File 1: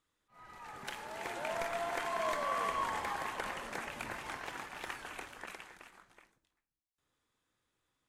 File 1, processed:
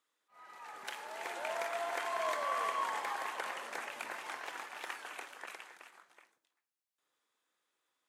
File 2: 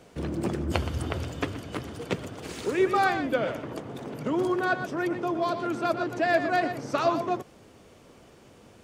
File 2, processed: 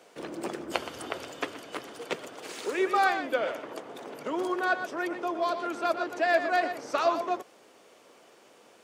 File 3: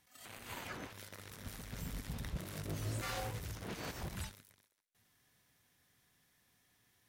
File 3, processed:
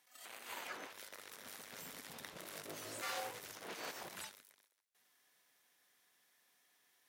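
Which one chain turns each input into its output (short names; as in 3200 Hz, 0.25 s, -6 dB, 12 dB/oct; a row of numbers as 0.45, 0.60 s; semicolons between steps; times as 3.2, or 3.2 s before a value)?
HPF 430 Hz 12 dB/oct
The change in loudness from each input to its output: -0.5, -2.0, -3.0 LU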